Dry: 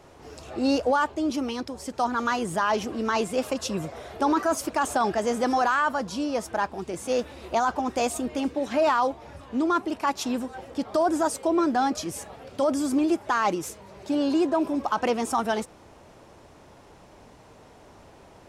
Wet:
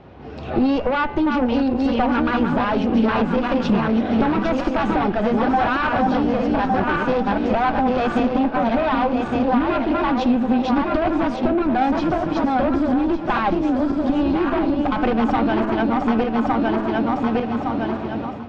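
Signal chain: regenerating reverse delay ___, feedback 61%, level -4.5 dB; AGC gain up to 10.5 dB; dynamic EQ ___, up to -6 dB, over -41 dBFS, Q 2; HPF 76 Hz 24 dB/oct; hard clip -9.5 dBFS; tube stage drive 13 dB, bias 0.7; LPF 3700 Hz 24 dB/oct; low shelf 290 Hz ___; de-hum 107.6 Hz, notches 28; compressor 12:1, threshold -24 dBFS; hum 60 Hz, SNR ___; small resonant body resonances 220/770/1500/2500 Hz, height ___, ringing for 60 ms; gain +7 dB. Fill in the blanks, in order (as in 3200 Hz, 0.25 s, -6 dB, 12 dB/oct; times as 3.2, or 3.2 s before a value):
0.58 s, 110 Hz, +9.5 dB, 32 dB, 6 dB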